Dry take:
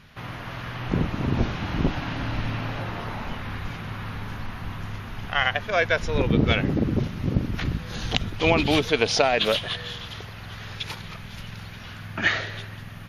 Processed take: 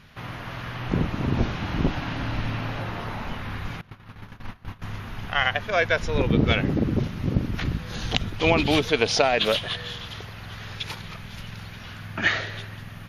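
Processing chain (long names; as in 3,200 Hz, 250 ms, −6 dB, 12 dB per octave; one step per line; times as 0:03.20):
0:03.81–0:04.82: noise gate −30 dBFS, range −21 dB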